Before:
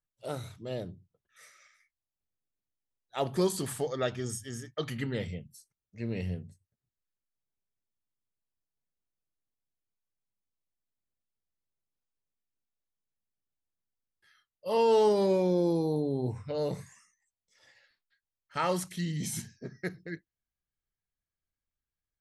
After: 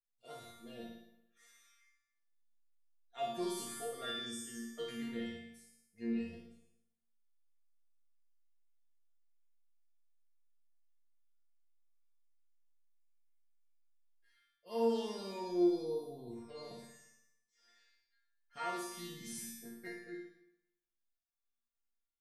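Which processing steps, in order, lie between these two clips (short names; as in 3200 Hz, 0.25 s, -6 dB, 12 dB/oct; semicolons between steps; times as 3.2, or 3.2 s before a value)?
resonator bank A#3 fifth, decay 0.7 s; flutter echo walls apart 9.7 m, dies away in 0.8 s; gain +10.5 dB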